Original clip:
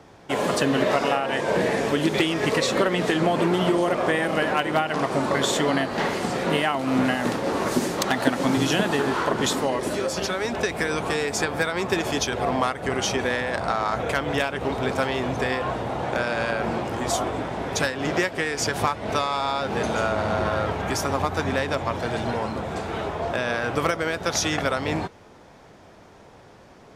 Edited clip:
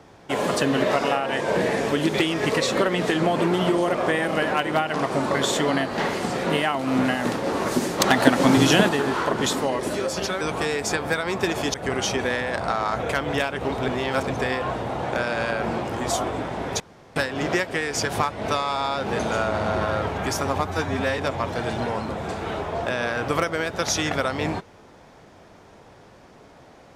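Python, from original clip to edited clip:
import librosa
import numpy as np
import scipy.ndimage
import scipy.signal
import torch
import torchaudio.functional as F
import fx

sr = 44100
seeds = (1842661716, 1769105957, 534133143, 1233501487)

y = fx.edit(x, sr, fx.clip_gain(start_s=8.0, length_s=0.89, db=5.0),
    fx.cut(start_s=10.41, length_s=0.49),
    fx.cut(start_s=12.23, length_s=0.51),
    fx.reverse_span(start_s=14.88, length_s=0.42),
    fx.insert_room_tone(at_s=17.8, length_s=0.36),
    fx.stretch_span(start_s=21.31, length_s=0.34, factor=1.5), tone=tone)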